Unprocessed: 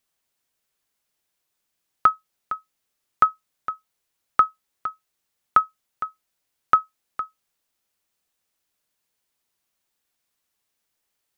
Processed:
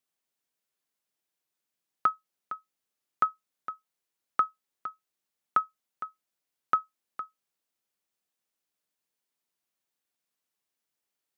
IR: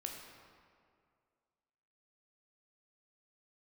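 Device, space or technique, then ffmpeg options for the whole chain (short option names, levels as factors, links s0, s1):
filter by subtraction: -filter_complex "[0:a]asplit=2[s0][s1];[s1]lowpass=230,volume=-1[s2];[s0][s2]amix=inputs=2:normalize=0,volume=0.376"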